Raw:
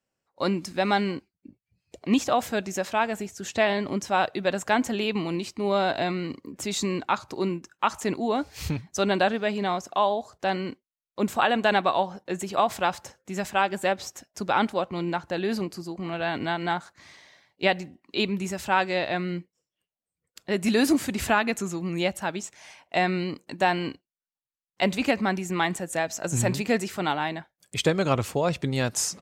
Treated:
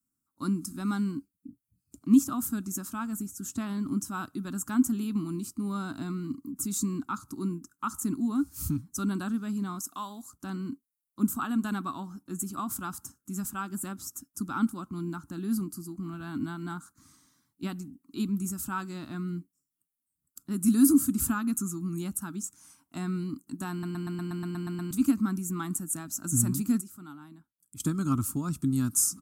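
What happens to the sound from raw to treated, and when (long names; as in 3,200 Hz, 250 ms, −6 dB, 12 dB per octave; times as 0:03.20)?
0:09.79–0:10.32: spectral tilt +2.5 dB per octave
0:23.71: stutter in place 0.12 s, 10 plays
0:26.81–0:27.80: clip gain −12 dB
whole clip: drawn EQ curve 180 Hz 0 dB, 280 Hz +7 dB, 500 Hz −29 dB, 760 Hz −21 dB, 1,300 Hz −1 dB, 1,900 Hz −23 dB, 4,000 Hz −14 dB, 10,000 Hz +12 dB; level −2 dB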